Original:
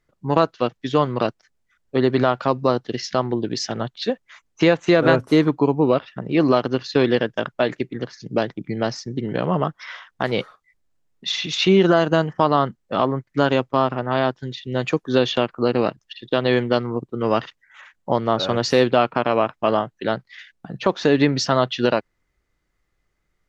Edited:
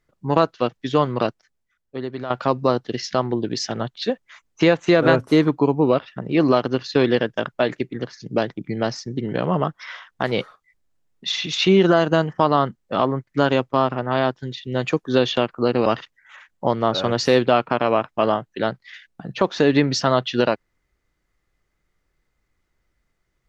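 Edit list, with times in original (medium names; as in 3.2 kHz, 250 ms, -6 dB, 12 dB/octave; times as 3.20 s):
1.24–2.30 s: fade out quadratic, to -12.5 dB
15.86–17.31 s: delete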